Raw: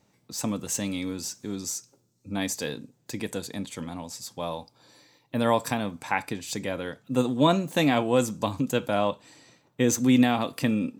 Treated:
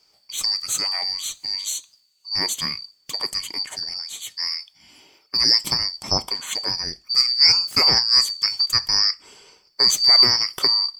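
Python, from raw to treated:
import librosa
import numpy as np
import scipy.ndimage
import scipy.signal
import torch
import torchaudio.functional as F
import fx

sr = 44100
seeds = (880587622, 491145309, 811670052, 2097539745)

y = fx.band_shuffle(x, sr, order='2341')
y = F.gain(torch.from_numpy(y), 5.5).numpy()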